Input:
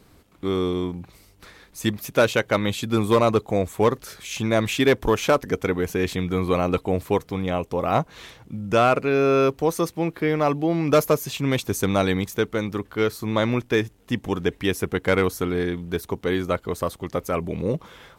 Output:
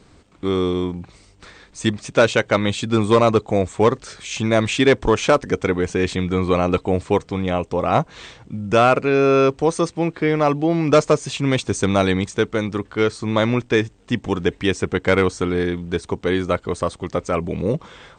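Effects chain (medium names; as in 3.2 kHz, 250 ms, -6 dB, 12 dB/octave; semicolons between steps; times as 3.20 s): trim +3.5 dB; MP2 96 kbps 32 kHz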